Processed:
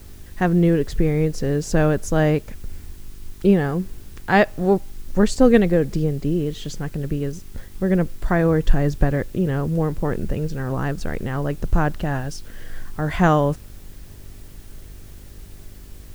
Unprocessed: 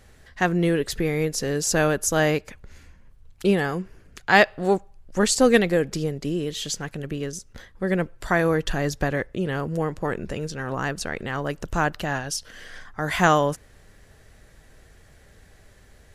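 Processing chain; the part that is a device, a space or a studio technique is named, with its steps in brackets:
spectral tilt −3 dB per octave
video cassette with head-switching buzz (hum with harmonics 50 Hz, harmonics 8, −47 dBFS −4 dB per octave; white noise bed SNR 31 dB)
level −1 dB

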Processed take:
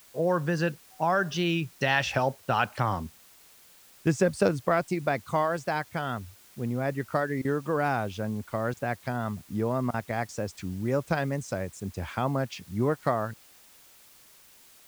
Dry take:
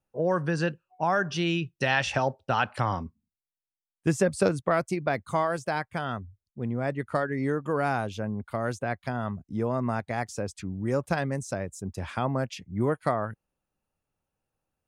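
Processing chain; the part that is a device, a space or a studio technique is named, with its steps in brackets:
worn cassette (low-pass filter 7,900 Hz; tape wow and flutter; tape dropouts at 0:07.42/0:08.74/0:09.91, 27 ms −22 dB; white noise bed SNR 26 dB)

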